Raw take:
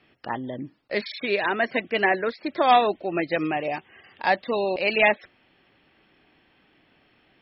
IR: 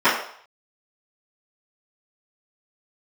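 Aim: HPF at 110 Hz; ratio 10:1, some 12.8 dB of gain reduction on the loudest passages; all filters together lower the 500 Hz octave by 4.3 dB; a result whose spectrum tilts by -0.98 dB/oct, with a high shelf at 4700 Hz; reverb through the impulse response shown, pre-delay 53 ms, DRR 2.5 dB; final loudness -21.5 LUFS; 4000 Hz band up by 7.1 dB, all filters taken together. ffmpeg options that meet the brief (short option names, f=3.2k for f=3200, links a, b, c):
-filter_complex "[0:a]highpass=110,equalizer=f=500:t=o:g=-6,equalizer=f=4k:t=o:g=7.5,highshelf=f=4.7k:g=4,acompressor=threshold=-26dB:ratio=10,asplit=2[a][b];[1:a]atrim=start_sample=2205,adelay=53[c];[b][c]afir=irnorm=-1:irlink=0,volume=-26dB[d];[a][d]amix=inputs=2:normalize=0,volume=8.5dB"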